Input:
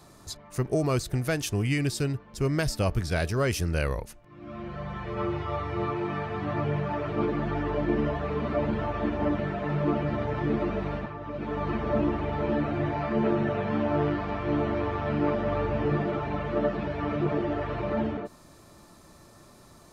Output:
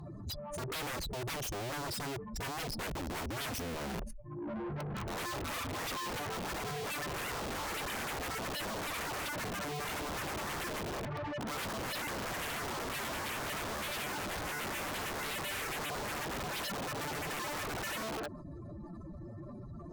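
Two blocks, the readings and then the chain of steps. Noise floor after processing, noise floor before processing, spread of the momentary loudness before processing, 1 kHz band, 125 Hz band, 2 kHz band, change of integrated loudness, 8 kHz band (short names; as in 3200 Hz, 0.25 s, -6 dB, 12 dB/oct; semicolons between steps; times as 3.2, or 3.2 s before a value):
-46 dBFS, -53 dBFS, 7 LU, -5.5 dB, -14.0 dB, -2.0 dB, -9.0 dB, n/a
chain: spectral contrast raised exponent 2.9; wrapped overs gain 29 dB; added harmonics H 3 -15 dB, 5 -7 dB, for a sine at -29 dBFS; soft clip -35.5 dBFS, distortion -11 dB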